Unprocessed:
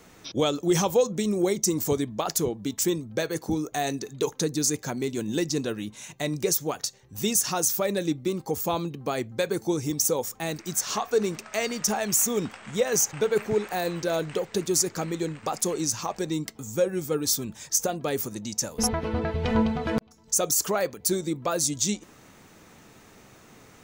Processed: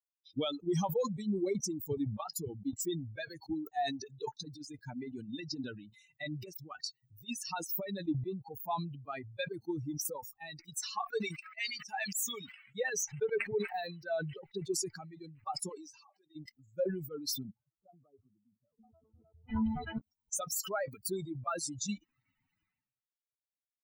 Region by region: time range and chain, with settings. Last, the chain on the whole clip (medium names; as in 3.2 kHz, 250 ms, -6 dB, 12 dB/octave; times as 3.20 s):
4.40–8.02 s: compressor with a negative ratio -27 dBFS, ratio -0.5 + high-pass 59 Hz
11.12–12.75 s: tilt shelf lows -6 dB, about 930 Hz + slow attack 104 ms + tape noise reduction on one side only decoder only
15.69–16.36 s: high-pass 270 Hz + compression, threshold -32 dBFS
17.43–19.49 s: steep low-pass 1.3 kHz 48 dB/octave + compression 1.5:1, threshold -42 dBFS + comb of notches 940 Hz
whole clip: expander on every frequency bin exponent 3; peak limiter -24 dBFS; decay stretcher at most 64 dB/s; trim -1 dB